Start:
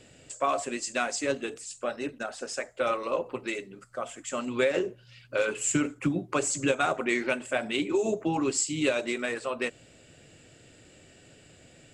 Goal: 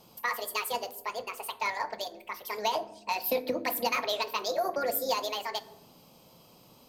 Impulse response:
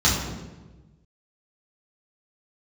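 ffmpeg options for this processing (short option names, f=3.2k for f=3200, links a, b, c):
-filter_complex "[0:a]asplit=2[a][b];[b]equalizer=f=980:t=o:w=0.37:g=4[c];[1:a]atrim=start_sample=2205[d];[c][d]afir=irnorm=-1:irlink=0,volume=-31dB[e];[a][e]amix=inputs=2:normalize=0,asetrate=76440,aresample=44100,volume=-3dB"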